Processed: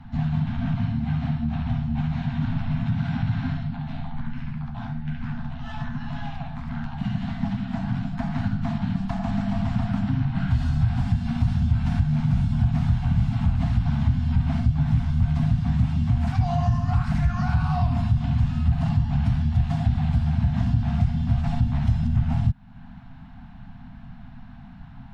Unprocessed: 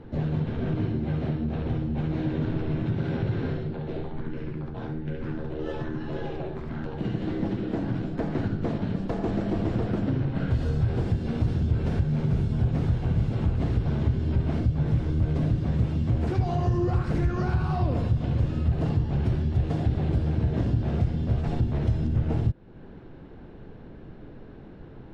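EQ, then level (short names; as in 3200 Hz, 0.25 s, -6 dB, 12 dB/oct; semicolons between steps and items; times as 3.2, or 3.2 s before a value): Chebyshev band-stop 260–680 Hz, order 5; +4.0 dB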